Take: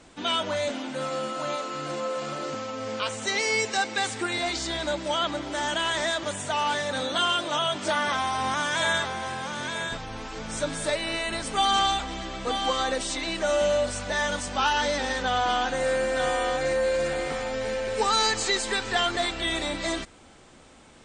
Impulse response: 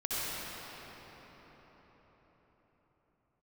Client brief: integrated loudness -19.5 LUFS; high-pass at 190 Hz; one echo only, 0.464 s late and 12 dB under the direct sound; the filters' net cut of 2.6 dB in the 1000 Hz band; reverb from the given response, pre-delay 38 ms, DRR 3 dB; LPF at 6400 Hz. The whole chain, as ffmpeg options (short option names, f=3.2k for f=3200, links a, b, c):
-filter_complex "[0:a]highpass=190,lowpass=6.4k,equalizer=f=1k:t=o:g=-3.5,aecho=1:1:464:0.251,asplit=2[a][b];[1:a]atrim=start_sample=2205,adelay=38[c];[b][c]afir=irnorm=-1:irlink=0,volume=-11dB[d];[a][d]amix=inputs=2:normalize=0,volume=6.5dB"